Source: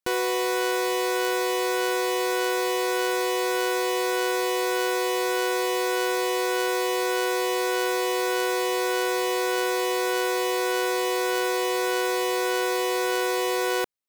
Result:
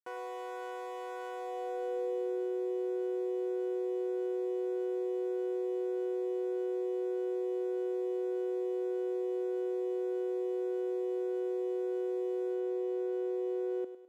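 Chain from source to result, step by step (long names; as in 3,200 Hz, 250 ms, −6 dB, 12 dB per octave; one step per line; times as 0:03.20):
thirty-one-band graphic EQ 500 Hz +4 dB, 1,000 Hz −6 dB, 4,000 Hz −8 dB
band-pass filter sweep 920 Hz → 350 Hz, 0:01.29–0:02.48
high-shelf EQ 6,100 Hz +10 dB, from 0:12.54 +4 dB
feedback echo with a high-pass in the loop 103 ms, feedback 47%, high-pass 300 Hz, level −10 dB
level −8 dB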